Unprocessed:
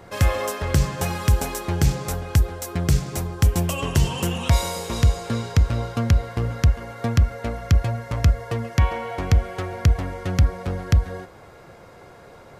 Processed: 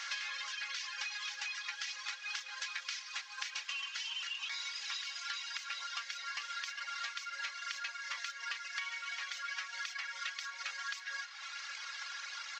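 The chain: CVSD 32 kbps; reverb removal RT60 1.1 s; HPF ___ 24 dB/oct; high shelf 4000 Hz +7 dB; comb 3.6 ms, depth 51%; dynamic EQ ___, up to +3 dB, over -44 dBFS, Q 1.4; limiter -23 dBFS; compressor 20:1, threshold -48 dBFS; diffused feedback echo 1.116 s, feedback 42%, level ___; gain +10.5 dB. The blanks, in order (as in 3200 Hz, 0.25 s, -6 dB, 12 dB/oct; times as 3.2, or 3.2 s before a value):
1500 Hz, 2300 Hz, -14 dB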